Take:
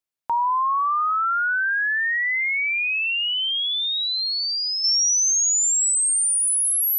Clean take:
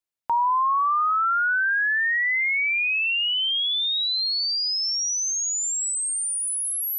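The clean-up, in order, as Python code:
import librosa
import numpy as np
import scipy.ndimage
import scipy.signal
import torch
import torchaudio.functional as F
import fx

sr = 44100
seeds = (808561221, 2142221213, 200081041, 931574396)

y = fx.gain(x, sr, db=fx.steps((0.0, 0.0), (4.84, -6.0)))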